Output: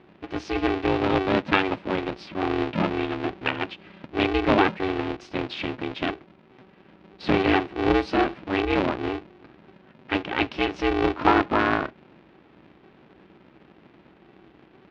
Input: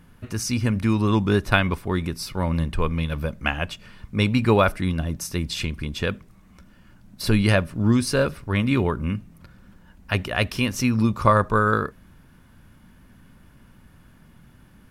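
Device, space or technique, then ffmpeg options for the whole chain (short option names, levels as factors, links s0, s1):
ring modulator pedal into a guitar cabinet: -af "aeval=exprs='val(0)*sgn(sin(2*PI*190*n/s))':c=same,highpass=76,equalizer=f=96:t=q:w=4:g=-8,equalizer=f=330:t=q:w=4:g=6,equalizer=f=810:t=q:w=4:g=3,equalizer=f=2500:t=q:w=4:g=3,lowpass=f=3800:w=0.5412,lowpass=f=3800:w=1.3066,volume=0.708"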